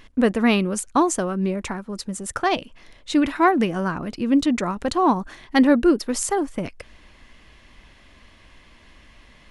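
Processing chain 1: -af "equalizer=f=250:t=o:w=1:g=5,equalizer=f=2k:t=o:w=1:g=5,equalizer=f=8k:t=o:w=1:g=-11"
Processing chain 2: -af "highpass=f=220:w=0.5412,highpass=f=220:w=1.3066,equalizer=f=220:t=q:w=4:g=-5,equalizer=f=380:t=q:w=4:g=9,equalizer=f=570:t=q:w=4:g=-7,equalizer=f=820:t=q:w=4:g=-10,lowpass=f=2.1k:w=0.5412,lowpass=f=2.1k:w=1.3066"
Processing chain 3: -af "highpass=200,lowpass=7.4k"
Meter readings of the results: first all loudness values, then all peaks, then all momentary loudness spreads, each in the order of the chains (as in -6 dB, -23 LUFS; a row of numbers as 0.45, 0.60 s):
-18.5, -21.0, -22.5 LUFS; -2.5, -3.5, -4.5 dBFS; 13, 15, 13 LU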